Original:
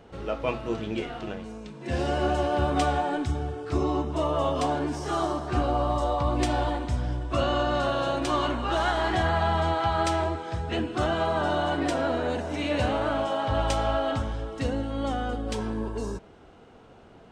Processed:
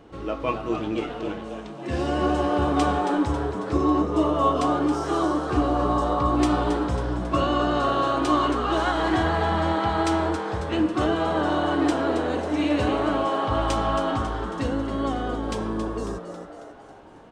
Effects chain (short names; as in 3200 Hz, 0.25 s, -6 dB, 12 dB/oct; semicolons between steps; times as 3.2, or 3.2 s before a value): small resonant body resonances 310/1100 Hz, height 12 dB, ringing for 90 ms; on a send: frequency-shifting echo 0.273 s, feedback 54%, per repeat +120 Hz, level -9.5 dB